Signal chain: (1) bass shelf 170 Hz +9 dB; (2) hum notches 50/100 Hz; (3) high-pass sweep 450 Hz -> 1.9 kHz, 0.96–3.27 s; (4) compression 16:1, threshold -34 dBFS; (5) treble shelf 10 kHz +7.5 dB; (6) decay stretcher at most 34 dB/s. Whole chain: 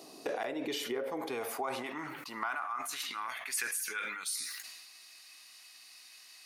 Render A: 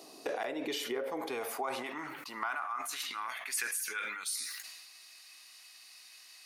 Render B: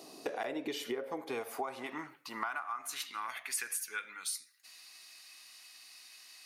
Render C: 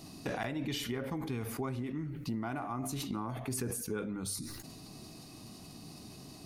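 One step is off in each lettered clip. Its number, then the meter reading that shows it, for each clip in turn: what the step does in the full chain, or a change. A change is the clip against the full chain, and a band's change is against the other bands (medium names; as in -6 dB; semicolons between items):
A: 1, 125 Hz band -4.5 dB; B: 6, crest factor change +2.5 dB; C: 3, 125 Hz band +24.0 dB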